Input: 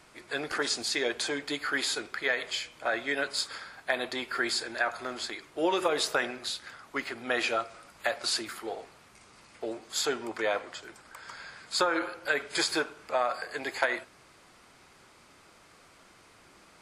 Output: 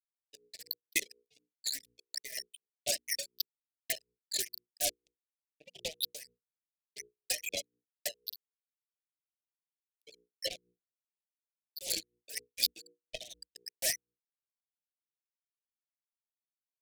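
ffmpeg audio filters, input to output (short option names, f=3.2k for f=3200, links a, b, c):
-filter_complex "[0:a]acrossover=split=880[a][b];[a]acompressor=threshold=-44dB:ratio=20[c];[c][b]amix=inputs=2:normalize=0,afwtdn=0.0158,asplit=2[d][e];[e]adelay=62,lowpass=f=1.3k:p=1,volume=-5.5dB,asplit=2[f][g];[g]adelay=62,lowpass=f=1.3k:p=1,volume=0.15,asplit=2[h][i];[i]adelay=62,lowpass=f=1.3k:p=1,volume=0.15[j];[d][f][h][j]amix=inputs=4:normalize=0,flanger=delay=7.9:depth=8.8:regen=-2:speed=0.23:shape=triangular,adynamicsmooth=sensitivity=2.5:basefreq=3.1k,afftfilt=real='re*gte(hypot(re,im),0.0447)':imag='im*gte(hypot(re,im),0.0447)':win_size=1024:overlap=0.75,acrusher=bits=5:mix=0:aa=0.5,asuperstop=centerf=1200:order=8:qfactor=0.76,highshelf=f=3.9k:g=12,bandreject=f=60:t=h:w=6,bandreject=f=120:t=h:w=6,bandreject=f=180:t=h:w=6,bandreject=f=240:t=h:w=6,bandreject=f=300:t=h:w=6,bandreject=f=360:t=h:w=6,bandreject=f=420:t=h:w=6,bandreject=f=480:t=h:w=6,aeval=exprs='val(0)*pow(10,-20*(0.5-0.5*cos(2*PI*4.1*n/s))/20)':c=same,volume=8.5dB"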